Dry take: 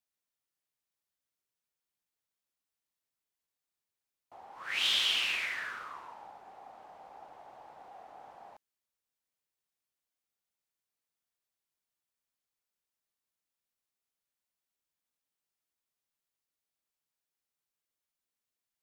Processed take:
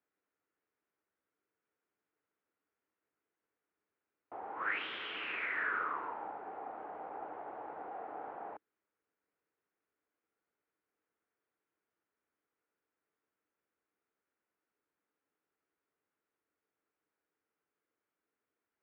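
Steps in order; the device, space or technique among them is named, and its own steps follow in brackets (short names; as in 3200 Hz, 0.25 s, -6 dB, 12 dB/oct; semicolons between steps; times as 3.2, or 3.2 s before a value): bass amplifier (compressor 4:1, threshold -38 dBFS, peak gain reduction 11 dB; speaker cabinet 82–2200 Hz, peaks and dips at 130 Hz -6 dB, 310 Hz +9 dB, 440 Hz +9 dB, 1400 Hz +5 dB); gain +5.5 dB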